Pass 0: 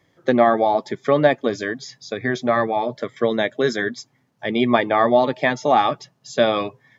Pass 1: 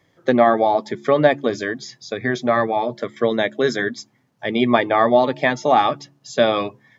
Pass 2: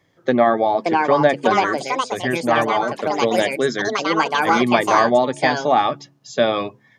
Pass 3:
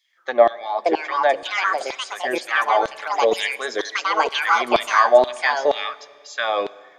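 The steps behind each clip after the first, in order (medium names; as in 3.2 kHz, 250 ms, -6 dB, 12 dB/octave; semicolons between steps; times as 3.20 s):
de-hum 70.92 Hz, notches 5; trim +1 dB
ever faster or slower copies 647 ms, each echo +5 st, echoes 2; trim -1 dB
LFO high-pass saw down 2.1 Hz 380–3800 Hz; Schroeder reverb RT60 1.9 s, combs from 28 ms, DRR 19 dB; trim -3 dB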